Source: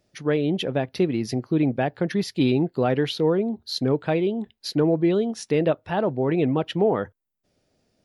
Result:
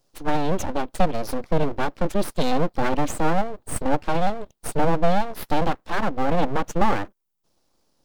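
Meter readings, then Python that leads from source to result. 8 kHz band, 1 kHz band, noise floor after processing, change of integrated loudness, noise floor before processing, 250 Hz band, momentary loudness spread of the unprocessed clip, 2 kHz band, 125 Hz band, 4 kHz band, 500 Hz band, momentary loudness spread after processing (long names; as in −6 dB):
+6.0 dB, +8.0 dB, −71 dBFS, −1.5 dB, −75 dBFS, −4.0 dB, 5 LU, +3.0 dB, −2.5 dB, −4.0 dB, −3.0 dB, 6 LU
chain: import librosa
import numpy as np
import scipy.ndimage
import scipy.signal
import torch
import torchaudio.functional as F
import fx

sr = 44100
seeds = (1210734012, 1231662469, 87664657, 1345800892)

y = fx.fixed_phaser(x, sr, hz=380.0, stages=8)
y = np.abs(y)
y = y * librosa.db_to_amplitude(6.0)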